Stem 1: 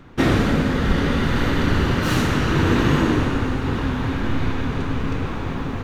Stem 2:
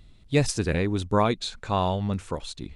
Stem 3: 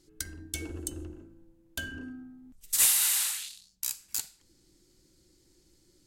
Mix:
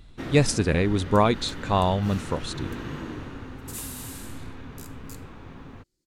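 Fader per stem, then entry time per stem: -17.0 dB, +2.5 dB, -15.0 dB; 0.00 s, 0.00 s, 0.95 s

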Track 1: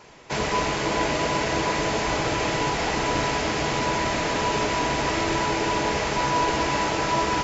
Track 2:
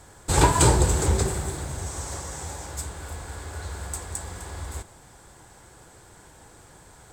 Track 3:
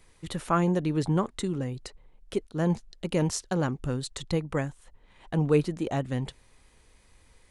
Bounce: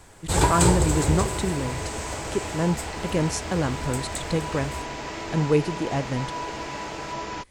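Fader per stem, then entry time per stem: -9.5 dB, -2.0 dB, +2.0 dB; 0.00 s, 0.00 s, 0.00 s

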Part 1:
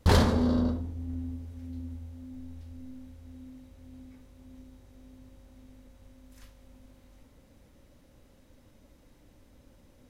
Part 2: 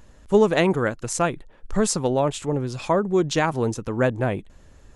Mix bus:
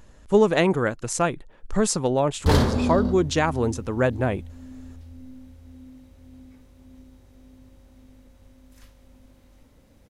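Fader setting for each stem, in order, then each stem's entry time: +2.0 dB, -0.5 dB; 2.40 s, 0.00 s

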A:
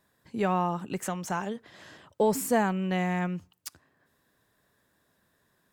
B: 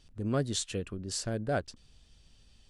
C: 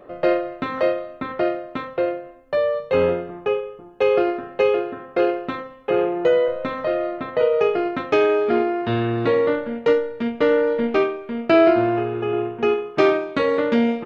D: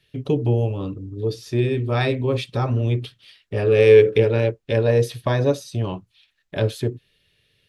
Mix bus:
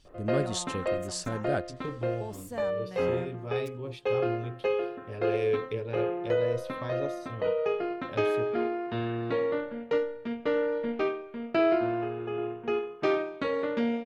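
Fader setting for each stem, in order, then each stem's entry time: -15.5 dB, -0.5 dB, -10.0 dB, -16.5 dB; 0.00 s, 0.00 s, 0.05 s, 1.55 s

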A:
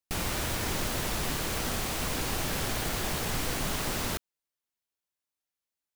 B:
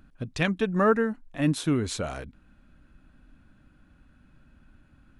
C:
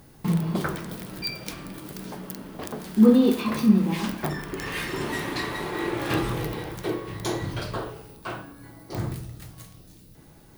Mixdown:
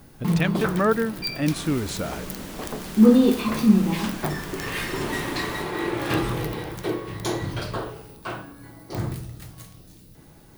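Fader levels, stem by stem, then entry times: -8.5 dB, +0.5 dB, +1.5 dB; 1.45 s, 0.00 s, 0.00 s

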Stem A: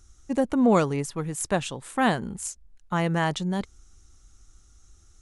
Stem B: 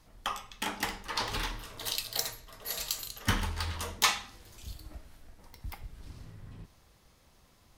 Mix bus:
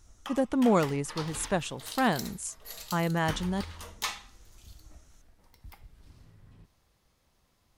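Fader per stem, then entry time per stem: -3.5 dB, -7.5 dB; 0.00 s, 0.00 s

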